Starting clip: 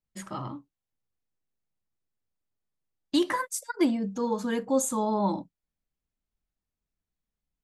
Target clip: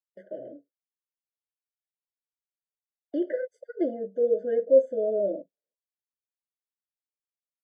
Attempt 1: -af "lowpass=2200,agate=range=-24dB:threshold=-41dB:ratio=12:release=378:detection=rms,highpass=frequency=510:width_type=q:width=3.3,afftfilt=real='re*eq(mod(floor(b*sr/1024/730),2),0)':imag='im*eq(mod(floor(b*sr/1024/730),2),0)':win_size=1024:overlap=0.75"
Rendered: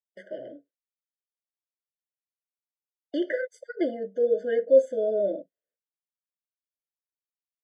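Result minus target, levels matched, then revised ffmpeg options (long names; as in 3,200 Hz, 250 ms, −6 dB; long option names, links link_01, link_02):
2,000 Hz band +10.0 dB
-af "lowpass=860,agate=range=-24dB:threshold=-41dB:ratio=12:release=378:detection=rms,highpass=frequency=510:width_type=q:width=3.3,afftfilt=real='re*eq(mod(floor(b*sr/1024/730),2),0)':imag='im*eq(mod(floor(b*sr/1024/730),2),0)':win_size=1024:overlap=0.75"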